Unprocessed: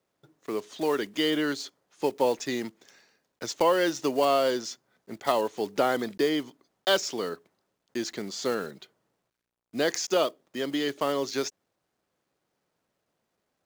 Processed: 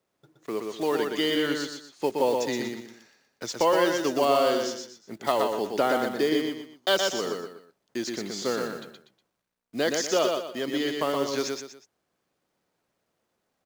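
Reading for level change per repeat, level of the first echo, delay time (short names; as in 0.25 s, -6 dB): -9.5 dB, -4.0 dB, 0.121 s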